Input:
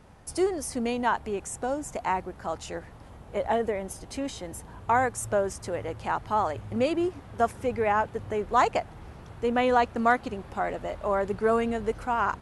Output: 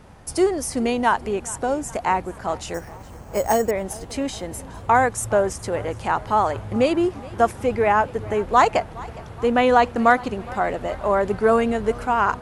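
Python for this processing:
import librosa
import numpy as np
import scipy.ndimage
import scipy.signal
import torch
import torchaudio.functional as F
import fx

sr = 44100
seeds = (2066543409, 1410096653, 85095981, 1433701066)

y = fx.resample_bad(x, sr, factor=6, down='filtered', up='hold', at=(2.74, 3.71))
y = fx.echo_warbled(y, sr, ms=415, feedback_pct=58, rate_hz=2.8, cents=77, wet_db=-21.0)
y = y * 10.0 ** (6.5 / 20.0)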